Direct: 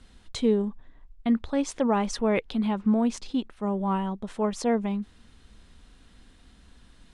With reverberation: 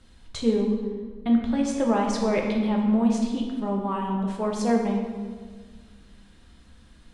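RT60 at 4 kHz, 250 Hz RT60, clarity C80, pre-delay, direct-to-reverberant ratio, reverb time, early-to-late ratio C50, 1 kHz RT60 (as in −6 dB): 1.1 s, 2.1 s, 5.0 dB, 3 ms, −0.5 dB, 1.6 s, 3.0 dB, 1.5 s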